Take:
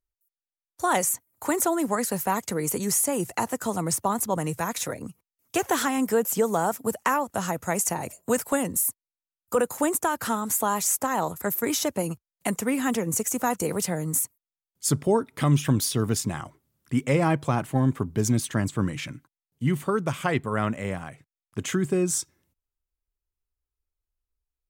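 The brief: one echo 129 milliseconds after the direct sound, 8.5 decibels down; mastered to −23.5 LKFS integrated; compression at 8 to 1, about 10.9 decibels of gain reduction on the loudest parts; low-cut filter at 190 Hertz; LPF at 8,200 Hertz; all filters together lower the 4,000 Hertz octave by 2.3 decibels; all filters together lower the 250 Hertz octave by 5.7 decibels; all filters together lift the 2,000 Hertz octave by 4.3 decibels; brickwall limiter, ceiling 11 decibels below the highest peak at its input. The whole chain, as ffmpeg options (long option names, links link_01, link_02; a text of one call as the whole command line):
ffmpeg -i in.wav -af "highpass=190,lowpass=8200,equalizer=frequency=250:width_type=o:gain=-5.5,equalizer=frequency=2000:width_type=o:gain=6.5,equalizer=frequency=4000:width_type=o:gain=-5,acompressor=threshold=-30dB:ratio=8,alimiter=level_in=1.5dB:limit=-24dB:level=0:latency=1,volume=-1.5dB,aecho=1:1:129:0.376,volume=13dB" out.wav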